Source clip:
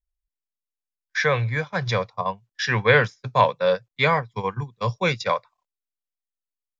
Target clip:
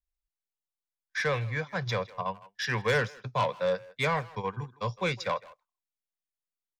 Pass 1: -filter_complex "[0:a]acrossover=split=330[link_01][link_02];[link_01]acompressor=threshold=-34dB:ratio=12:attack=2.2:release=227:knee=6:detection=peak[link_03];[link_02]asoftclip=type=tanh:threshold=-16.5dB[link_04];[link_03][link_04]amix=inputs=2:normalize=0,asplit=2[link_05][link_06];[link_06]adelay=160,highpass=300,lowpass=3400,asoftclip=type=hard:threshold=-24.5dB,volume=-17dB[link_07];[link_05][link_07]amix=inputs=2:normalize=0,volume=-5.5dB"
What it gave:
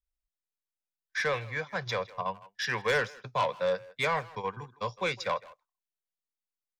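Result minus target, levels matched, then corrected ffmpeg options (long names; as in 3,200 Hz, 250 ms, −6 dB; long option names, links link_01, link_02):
downward compressor: peak gain reduction +10.5 dB
-filter_complex "[0:a]acrossover=split=330[link_01][link_02];[link_01]acompressor=threshold=-22.5dB:ratio=12:attack=2.2:release=227:knee=6:detection=peak[link_03];[link_02]asoftclip=type=tanh:threshold=-16.5dB[link_04];[link_03][link_04]amix=inputs=2:normalize=0,asplit=2[link_05][link_06];[link_06]adelay=160,highpass=300,lowpass=3400,asoftclip=type=hard:threshold=-24.5dB,volume=-17dB[link_07];[link_05][link_07]amix=inputs=2:normalize=0,volume=-5.5dB"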